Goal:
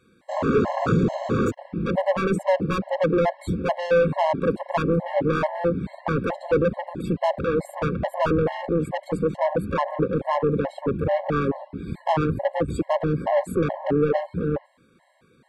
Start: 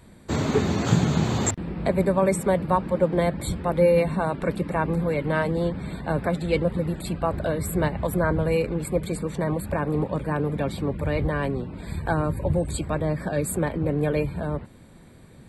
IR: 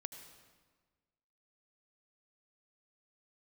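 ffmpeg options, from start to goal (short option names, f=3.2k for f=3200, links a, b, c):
-filter_complex "[0:a]afwtdn=0.0501,asplit=2[a][b];[b]highpass=f=720:p=1,volume=28dB,asoftclip=type=tanh:threshold=-5.5dB[c];[a][c]amix=inputs=2:normalize=0,lowpass=f=2.3k:p=1,volume=-6dB,afftfilt=real='re*gt(sin(2*PI*2.3*pts/sr)*(1-2*mod(floor(b*sr/1024/550),2)),0)':imag='im*gt(sin(2*PI*2.3*pts/sr)*(1-2*mod(floor(b*sr/1024/550),2)),0)':win_size=1024:overlap=0.75,volume=-4dB"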